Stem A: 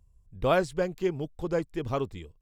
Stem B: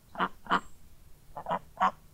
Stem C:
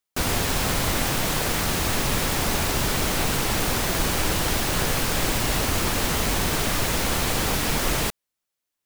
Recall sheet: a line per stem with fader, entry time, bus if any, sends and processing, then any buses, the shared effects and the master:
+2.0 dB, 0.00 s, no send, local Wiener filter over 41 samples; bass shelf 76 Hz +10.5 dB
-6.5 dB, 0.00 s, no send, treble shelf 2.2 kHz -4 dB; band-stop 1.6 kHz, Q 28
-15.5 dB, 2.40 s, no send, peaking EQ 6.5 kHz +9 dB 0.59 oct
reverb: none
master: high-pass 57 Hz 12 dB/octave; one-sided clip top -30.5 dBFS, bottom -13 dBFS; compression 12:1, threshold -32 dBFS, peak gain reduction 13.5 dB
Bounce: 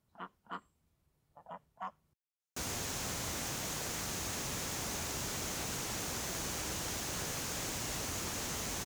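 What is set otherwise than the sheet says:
stem A: muted; stem B -6.5 dB -> -15.5 dB

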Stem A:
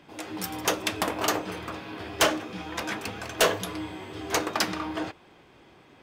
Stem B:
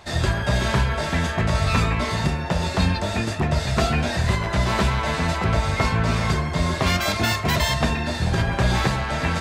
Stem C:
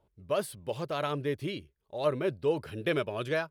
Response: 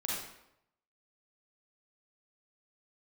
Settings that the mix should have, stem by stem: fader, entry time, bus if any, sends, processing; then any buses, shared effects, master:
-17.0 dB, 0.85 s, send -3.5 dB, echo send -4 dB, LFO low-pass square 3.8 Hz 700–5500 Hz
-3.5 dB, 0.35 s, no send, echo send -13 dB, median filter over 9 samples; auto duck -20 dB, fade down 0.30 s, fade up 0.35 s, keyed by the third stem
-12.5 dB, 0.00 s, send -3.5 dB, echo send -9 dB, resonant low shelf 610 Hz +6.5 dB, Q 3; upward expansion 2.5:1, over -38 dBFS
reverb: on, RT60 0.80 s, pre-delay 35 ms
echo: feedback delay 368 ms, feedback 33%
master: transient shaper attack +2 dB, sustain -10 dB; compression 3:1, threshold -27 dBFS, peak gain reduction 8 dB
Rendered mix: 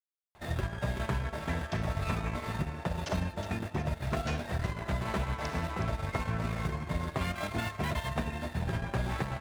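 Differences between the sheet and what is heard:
stem A -17.0 dB -> -24.5 dB; stem B -3.5 dB -> -10.5 dB; stem C: muted

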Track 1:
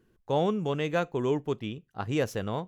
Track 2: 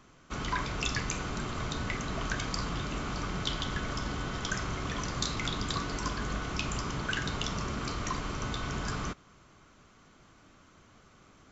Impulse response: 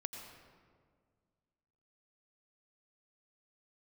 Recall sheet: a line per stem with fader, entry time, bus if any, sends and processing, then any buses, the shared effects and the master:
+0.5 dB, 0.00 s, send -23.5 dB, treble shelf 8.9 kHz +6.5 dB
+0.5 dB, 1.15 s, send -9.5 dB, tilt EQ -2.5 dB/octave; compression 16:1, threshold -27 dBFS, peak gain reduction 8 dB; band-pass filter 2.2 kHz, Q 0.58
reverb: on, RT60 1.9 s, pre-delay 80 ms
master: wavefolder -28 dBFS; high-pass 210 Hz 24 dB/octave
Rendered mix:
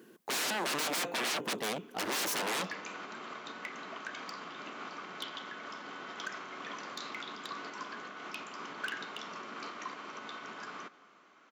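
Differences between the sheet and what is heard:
stem 1 +0.5 dB -> +11.5 dB; stem 2: entry 1.15 s -> 1.75 s

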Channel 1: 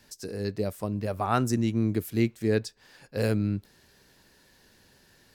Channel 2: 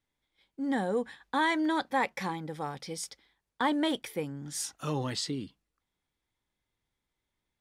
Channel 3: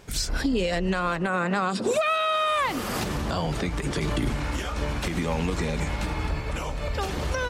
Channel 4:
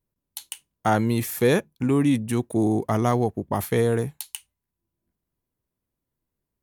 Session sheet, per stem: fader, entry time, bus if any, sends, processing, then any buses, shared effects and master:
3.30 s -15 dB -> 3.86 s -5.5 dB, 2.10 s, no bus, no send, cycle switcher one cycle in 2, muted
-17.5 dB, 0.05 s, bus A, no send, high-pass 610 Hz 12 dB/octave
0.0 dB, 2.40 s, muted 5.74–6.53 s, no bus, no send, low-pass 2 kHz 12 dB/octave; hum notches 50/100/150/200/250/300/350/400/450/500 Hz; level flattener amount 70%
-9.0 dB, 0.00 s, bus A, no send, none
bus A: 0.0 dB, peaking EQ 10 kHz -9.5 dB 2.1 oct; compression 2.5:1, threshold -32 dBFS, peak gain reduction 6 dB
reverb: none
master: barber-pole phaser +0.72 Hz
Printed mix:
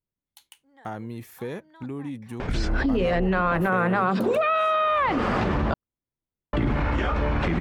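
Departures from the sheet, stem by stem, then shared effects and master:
stem 1: muted; master: missing barber-pole phaser +0.72 Hz

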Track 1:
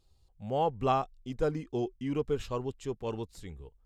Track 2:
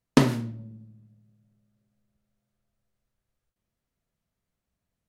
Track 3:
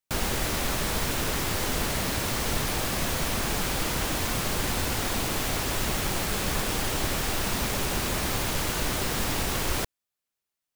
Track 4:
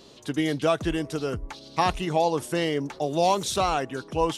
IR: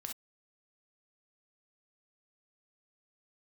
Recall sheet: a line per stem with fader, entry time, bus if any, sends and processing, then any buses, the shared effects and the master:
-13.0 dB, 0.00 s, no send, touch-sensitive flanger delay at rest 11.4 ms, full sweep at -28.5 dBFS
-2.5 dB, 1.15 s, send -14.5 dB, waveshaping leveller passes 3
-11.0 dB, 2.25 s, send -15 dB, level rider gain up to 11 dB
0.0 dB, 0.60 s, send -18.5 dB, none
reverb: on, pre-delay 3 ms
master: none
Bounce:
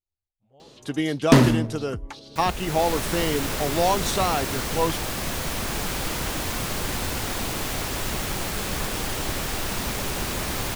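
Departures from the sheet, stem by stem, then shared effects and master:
stem 1 -13.0 dB -> -24.0 dB; reverb return -7.0 dB

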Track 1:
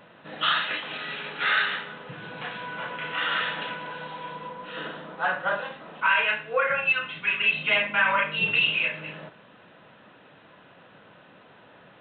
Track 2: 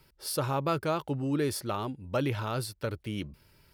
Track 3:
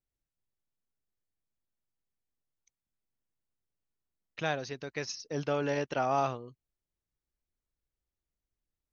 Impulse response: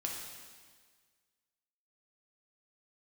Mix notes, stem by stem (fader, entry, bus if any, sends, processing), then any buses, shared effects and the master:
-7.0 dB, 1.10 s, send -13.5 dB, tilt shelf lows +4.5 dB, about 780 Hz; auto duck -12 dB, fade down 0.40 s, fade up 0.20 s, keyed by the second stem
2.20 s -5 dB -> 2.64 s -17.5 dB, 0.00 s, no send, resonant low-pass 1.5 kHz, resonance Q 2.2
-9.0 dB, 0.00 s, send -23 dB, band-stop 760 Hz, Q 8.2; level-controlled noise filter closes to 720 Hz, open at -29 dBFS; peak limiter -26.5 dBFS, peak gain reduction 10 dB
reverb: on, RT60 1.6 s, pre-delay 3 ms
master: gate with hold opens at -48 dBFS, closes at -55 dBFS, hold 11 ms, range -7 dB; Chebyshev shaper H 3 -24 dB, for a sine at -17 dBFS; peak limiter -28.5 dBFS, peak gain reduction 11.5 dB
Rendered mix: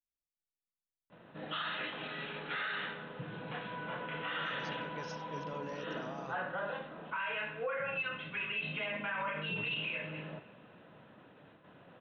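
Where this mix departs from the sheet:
stem 2: muted; master: missing Chebyshev shaper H 3 -24 dB, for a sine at -17 dBFS

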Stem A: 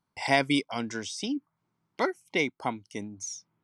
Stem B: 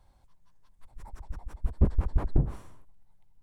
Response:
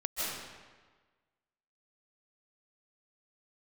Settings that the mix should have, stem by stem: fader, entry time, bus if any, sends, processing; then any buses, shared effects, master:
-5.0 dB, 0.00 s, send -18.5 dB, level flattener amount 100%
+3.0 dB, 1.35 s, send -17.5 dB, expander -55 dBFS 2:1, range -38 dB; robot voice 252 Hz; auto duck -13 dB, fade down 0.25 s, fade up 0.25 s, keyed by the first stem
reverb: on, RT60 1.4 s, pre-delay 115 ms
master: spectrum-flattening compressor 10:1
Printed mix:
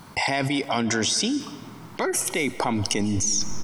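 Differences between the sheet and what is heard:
stem B +3.0 dB -> -4.0 dB; master: missing spectrum-flattening compressor 10:1

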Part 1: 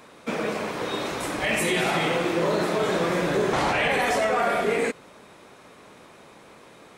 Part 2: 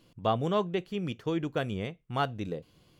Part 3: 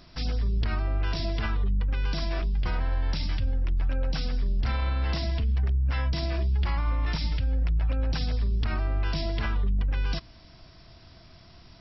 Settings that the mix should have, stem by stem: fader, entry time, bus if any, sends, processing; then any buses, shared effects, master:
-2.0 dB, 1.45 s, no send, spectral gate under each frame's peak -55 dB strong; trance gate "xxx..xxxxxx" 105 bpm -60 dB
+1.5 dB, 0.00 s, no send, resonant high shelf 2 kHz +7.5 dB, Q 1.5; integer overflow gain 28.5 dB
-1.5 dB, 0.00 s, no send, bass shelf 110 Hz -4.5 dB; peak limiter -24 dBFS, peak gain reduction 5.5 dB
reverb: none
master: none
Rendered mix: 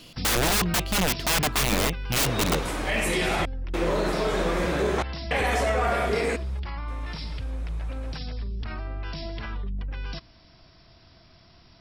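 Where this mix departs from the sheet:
stem 1: missing spectral gate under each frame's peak -55 dB strong; stem 2 +1.5 dB -> +10.5 dB

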